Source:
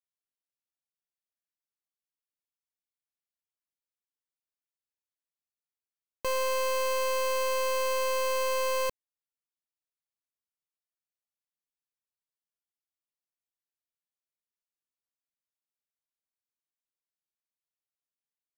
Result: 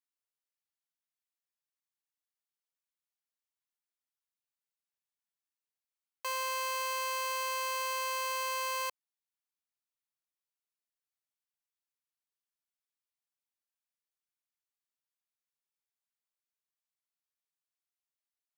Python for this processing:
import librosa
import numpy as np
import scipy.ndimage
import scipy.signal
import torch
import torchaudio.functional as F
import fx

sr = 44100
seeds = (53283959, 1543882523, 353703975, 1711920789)

y = scipy.signal.sosfilt(scipy.signal.butter(4, 720.0, 'highpass', fs=sr, output='sos'), x)
y = y * 10.0 ** (-2.0 / 20.0)